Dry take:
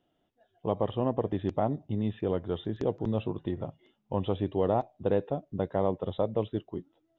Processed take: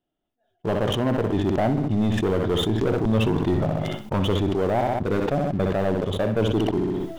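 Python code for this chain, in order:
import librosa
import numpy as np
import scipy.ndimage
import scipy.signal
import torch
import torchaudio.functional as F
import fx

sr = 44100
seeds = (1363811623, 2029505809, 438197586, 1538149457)

y = fx.peak_eq(x, sr, hz=98.0, db=-8.0, octaves=2.0)
y = fx.rider(y, sr, range_db=4, speed_s=0.5)
y = fx.low_shelf(y, sr, hz=180.0, db=10.0)
y = fx.leveller(y, sr, passes=3)
y = fx.notch(y, sr, hz=500.0, q=12.0)
y = fx.room_flutter(y, sr, wall_m=10.8, rt60_s=0.35)
y = fx.sustainer(y, sr, db_per_s=20.0)
y = y * 10.0 ** (-2.5 / 20.0)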